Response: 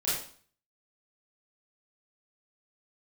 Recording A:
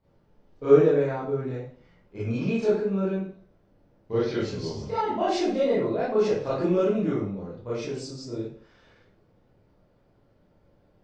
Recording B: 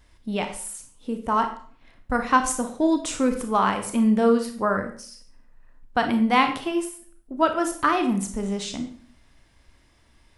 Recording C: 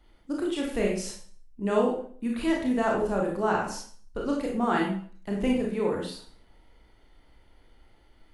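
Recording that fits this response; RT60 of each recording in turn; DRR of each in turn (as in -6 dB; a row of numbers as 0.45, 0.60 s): A; 0.50, 0.50, 0.50 s; -10.0, 5.5, -2.0 dB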